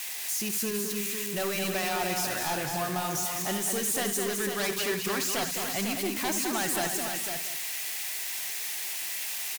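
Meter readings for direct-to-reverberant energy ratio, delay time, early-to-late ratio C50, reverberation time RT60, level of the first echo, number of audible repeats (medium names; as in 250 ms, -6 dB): no reverb, 72 ms, no reverb, no reverb, -11.0 dB, 6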